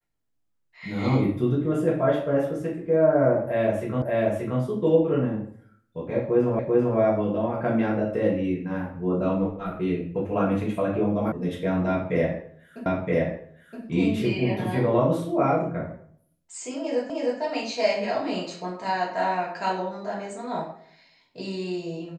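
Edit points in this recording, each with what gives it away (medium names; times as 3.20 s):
4.02 s: repeat of the last 0.58 s
6.59 s: repeat of the last 0.39 s
11.32 s: sound stops dead
12.86 s: repeat of the last 0.97 s
17.10 s: repeat of the last 0.31 s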